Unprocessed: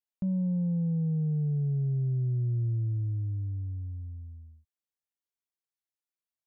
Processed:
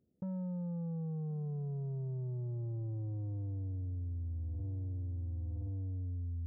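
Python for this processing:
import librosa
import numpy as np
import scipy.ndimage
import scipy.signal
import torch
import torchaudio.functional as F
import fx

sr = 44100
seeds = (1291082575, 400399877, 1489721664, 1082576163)

y = scipy.signal.sosfilt(scipy.signal.butter(4, 67.0, 'highpass', fs=sr, output='sos'), x)
y = fx.rider(y, sr, range_db=4, speed_s=0.5)
y = scipy.ndimage.gaussian_filter1d(y, 25.0, mode='constant')
y = 10.0 ** (-34.5 / 20.0) * np.tanh(y / 10.0 ** (-34.5 / 20.0))
y = fx.echo_feedback(y, sr, ms=1073, feedback_pct=20, wet_db=-20.5)
y = fx.env_flatten(y, sr, amount_pct=100)
y = F.gain(torch.from_numpy(y), -2.5).numpy()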